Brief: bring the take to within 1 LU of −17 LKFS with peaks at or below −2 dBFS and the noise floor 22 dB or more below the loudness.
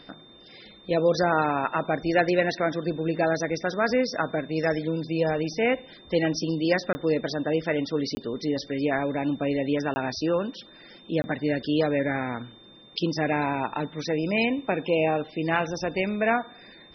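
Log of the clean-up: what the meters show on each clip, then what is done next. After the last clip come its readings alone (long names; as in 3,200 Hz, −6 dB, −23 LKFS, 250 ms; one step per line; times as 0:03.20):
number of dropouts 4; longest dropout 20 ms; interfering tone 3,600 Hz; level of the tone −51 dBFS; integrated loudness −26.5 LKFS; sample peak −8.5 dBFS; target loudness −17.0 LKFS
→ repair the gap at 0:06.93/0:08.15/0:09.94/0:11.22, 20 ms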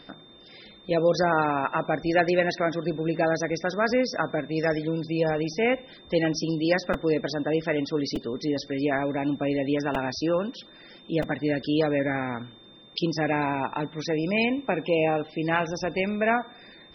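number of dropouts 0; interfering tone 3,600 Hz; level of the tone −51 dBFS
→ notch filter 3,600 Hz, Q 30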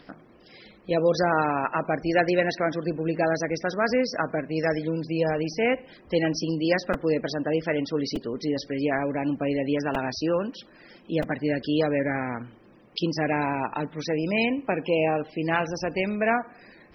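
interfering tone none found; integrated loudness −26.5 LKFS; sample peak −8.5 dBFS; target loudness −17.0 LKFS
→ level +9.5 dB
brickwall limiter −2 dBFS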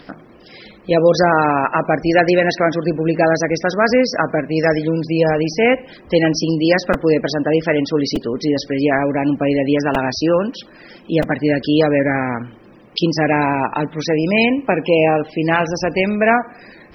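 integrated loudness −17.0 LKFS; sample peak −2.0 dBFS; background noise floor −44 dBFS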